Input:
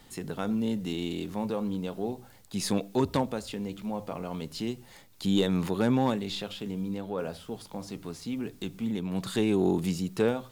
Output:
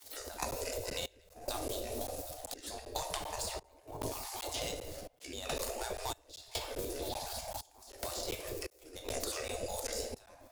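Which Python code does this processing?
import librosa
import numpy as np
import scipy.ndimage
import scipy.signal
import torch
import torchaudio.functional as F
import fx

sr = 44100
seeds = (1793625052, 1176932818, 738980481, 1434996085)

y = fx.pitch_trill(x, sr, semitones=-6.0, every_ms=121)
y = fx.high_shelf(y, sr, hz=4600.0, db=5.5)
y = np.sign(y) * np.maximum(np.abs(y) - 10.0 ** (-52.0 / 20.0), 0.0)
y = fx.level_steps(y, sr, step_db=11)
y = fx.band_shelf(y, sr, hz=1700.0, db=-12.0, octaves=2.4)
y = fx.echo_stepped(y, sr, ms=109, hz=180.0, octaves=0.7, feedback_pct=70, wet_db=-3.0)
y = fx.room_shoebox(y, sr, seeds[0], volume_m3=280.0, walls='mixed', distance_m=0.84)
y = fx.spec_gate(y, sr, threshold_db=-20, keep='weak')
y = fx.step_gate(y, sr, bpm=71, pattern='..xxx..xxxxx', floor_db=-24.0, edge_ms=4.5)
y = fx.buffer_crackle(y, sr, first_s=0.51, period_s=0.39, block=512, kind='zero')
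y = fx.band_squash(y, sr, depth_pct=100)
y = y * 10.0 ** (12.0 / 20.0)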